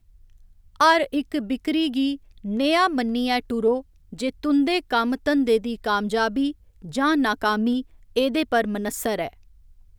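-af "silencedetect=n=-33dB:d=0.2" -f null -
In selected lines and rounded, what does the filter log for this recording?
silence_start: 0.00
silence_end: 0.80 | silence_duration: 0.80
silence_start: 2.16
silence_end: 2.45 | silence_duration: 0.29
silence_start: 3.81
silence_end: 4.13 | silence_duration: 0.32
silence_start: 6.52
silence_end: 6.84 | silence_duration: 0.33
silence_start: 7.82
silence_end: 8.16 | silence_duration: 0.35
silence_start: 9.28
silence_end: 9.98 | silence_duration: 0.70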